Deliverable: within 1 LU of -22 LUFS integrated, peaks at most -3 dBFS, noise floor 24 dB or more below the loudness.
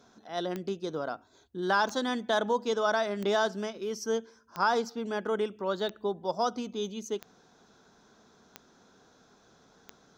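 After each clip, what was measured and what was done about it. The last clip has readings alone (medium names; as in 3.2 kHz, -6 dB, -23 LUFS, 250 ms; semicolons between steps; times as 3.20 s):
clicks found 8; loudness -31.0 LUFS; peak level -13.0 dBFS; loudness target -22.0 LUFS
-> de-click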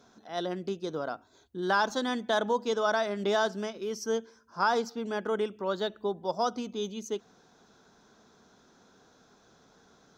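clicks found 0; loudness -31.0 LUFS; peak level -13.0 dBFS; loudness target -22.0 LUFS
-> trim +9 dB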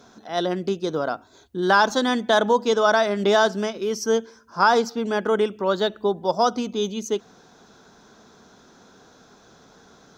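loudness -22.0 LUFS; peak level -4.0 dBFS; noise floor -53 dBFS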